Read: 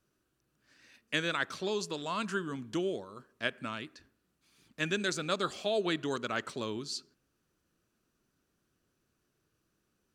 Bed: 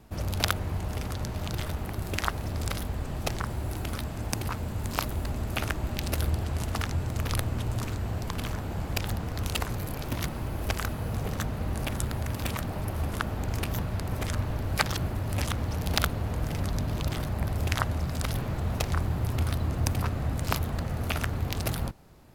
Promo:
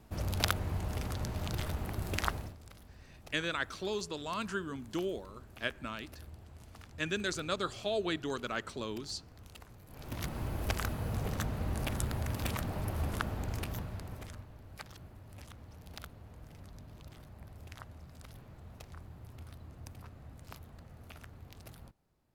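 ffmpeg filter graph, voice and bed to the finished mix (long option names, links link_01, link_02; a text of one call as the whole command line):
ffmpeg -i stem1.wav -i stem2.wav -filter_complex "[0:a]adelay=2200,volume=-2.5dB[link_01];[1:a]volume=14.5dB,afade=type=out:start_time=2.31:duration=0.25:silence=0.11885,afade=type=in:start_time=9.87:duration=0.54:silence=0.11885,afade=type=out:start_time=13.12:duration=1.35:silence=0.133352[link_02];[link_01][link_02]amix=inputs=2:normalize=0" out.wav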